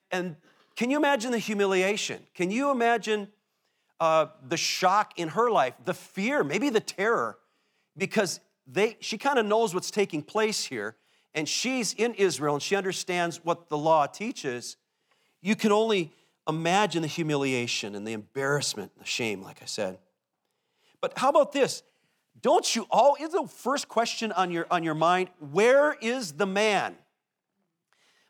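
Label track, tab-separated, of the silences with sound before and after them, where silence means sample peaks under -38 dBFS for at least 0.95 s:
19.950000	21.030000	silence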